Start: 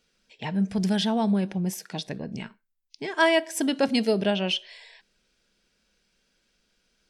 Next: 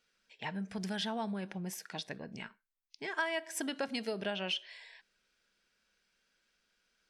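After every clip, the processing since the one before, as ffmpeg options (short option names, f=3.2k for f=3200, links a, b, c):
-af "equalizer=f=1.5k:w=1:g=6,acompressor=threshold=-22dB:ratio=10,lowshelf=f=350:g=-6.5,volume=-7.5dB"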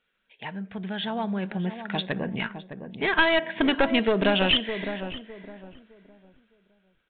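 -filter_complex "[0:a]dynaudnorm=f=260:g=13:m=13dB,aresample=8000,aeval=exprs='clip(val(0),-1,0.0596)':c=same,aresample=44100,asplit=2[a][b];[b]adelay=610,lowpass=f=990:p=1,volume=-8.5dB,asplit=2[c][d];[d]adelay=610,lowpass=f=990:p=1,volume=0.31,asplit=2[e][f];[f]adelay=610,lowpass=f=990:p=1,volume=0.31,asplit=2[g][h];[h]adelay=610,lowpass=f=990:p=1,volume=0.31[i];[a][c][e][g][i]amix=inputs=5:normalize=0,volume=3dB"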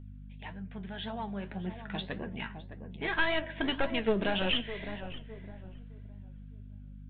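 -af "flanger=delay=1:depth=5.2:regen=61:speed=0.81:shape=sinusoidal,aeval=exprs='val(0)+0.01*(sin(2*PI*50*n/s)+sin(2*PI*2*50*n/s)/2+sin(2*PI*3*50*n/s)/3+sin(2*PI*4*50*n/s)/4+sin(2*PI*5*50*n/s)/5)':c=same,flanger=delay=8:depth=7.3:regen=62:speed=1.8:shape=triangular"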